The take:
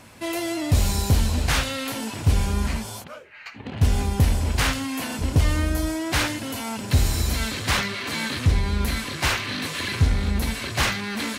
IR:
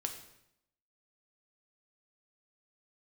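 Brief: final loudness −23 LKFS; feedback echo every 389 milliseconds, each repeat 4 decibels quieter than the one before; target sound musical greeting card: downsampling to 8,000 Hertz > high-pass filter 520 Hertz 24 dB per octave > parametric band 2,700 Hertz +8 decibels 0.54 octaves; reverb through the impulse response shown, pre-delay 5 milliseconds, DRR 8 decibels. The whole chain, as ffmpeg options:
-filter_complex "[0:a]aecho=1:1:389|778|1167|1556|1945|2334|2723|3112|3501:0.631|0.398|0.25|0.158|0.0994|0.0626|0.0394|0.0249|0.0157,asplit=2[link_01][link_02];[1:a]atrim=start_sample=2205,adelay=5[link_03];[link_02][link_03]afir=irnorm=-1:irlink=0,volume=-8dB[link_04];[link_01][link_04]amix=inputs=2:normalize=0,aresample=8000,aresample=44100,highpass=frequency=520:width=0.5412,highpass=frequency=520:width=1.3066,equalizer=frequency=2700:width_type=o:width=0.54:gain=8,volume=1dB"

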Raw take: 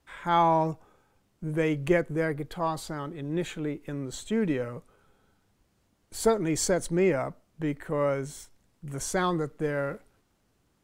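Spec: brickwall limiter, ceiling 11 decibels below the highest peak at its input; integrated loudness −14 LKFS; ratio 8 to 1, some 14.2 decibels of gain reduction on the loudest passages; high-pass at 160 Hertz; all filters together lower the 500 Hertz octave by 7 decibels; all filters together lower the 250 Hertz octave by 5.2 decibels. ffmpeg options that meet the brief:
ffmpeg -i in.wav -af "highpass=160,equalizer=frequency=250:width_type=o:gain=-3,equalizer=frequency=500:width_type=o:gain=-8,acompressor=threshold=-36dB:ratio=8,volume=29.5dB,alimiter=limit=-3.5dB:level=0:latency=1" out.wav

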